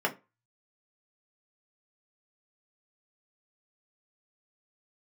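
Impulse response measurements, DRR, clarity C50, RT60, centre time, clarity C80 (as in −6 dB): −1.5 dB, 17.5 dB, 0.25 s, 10 ms, 24.0 dB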